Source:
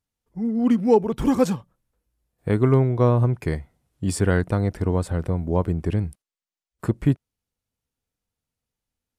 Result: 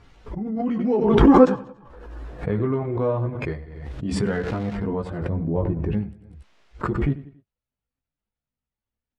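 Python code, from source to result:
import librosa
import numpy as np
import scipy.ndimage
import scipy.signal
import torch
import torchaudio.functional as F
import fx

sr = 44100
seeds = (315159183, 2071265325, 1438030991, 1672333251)

p1 = fx.spec_quant(x, sr, step_db=15)
p2 = fx.tilt_eq(p1, sr, slope=-2.0, at=(5.29, 5.92), fade=0.02)
p3 = p2 + fx.echo_feedback(p2, sr, ms=93, feedback_pct=36, wet_db=-15.0, dry=0)
p4 = fx.spec_box(p3, sr, start_s=1.2, length_s=1.17, low_hz=240.0, high_hz=1900.0, gain_db=8)
p5 = fx.dmg_crackle(p4, sr, seeds[0], per_s=300.0, level_db=-22.0, at=(4.25, 4.74), fade=0.02)
p6 = fx.chorus_voices(p5, sr, voices=6, hz=0.43, base_ms=17, depth_ms=3.1, mix_pct=45)
p7 = fx.level_steps(p6, sr, step_db=14)
p8 = p6 + (p7 * 10.0 ** (-2.0 / 20.0))
p9 = scipy.signal.sosfilt(scipy.signal.butter(2, 2900.0, 'lowpass', fs=sr, output='sos'), p8)
p10 = fx.pre_swell(p9, sr, db_per_s=37.0)
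y = p10 * 10.0 ** (-4.0 / 20.0)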